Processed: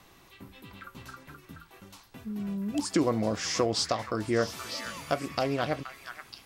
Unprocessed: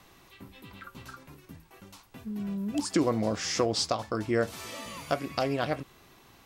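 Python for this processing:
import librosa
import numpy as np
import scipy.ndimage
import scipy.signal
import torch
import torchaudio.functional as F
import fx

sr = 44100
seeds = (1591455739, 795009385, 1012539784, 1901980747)

y = fx.echo_stepped(x, sr, ms=475, hz=1600.0, octaves=1.4, feedback_pct=70, wet_db=-5)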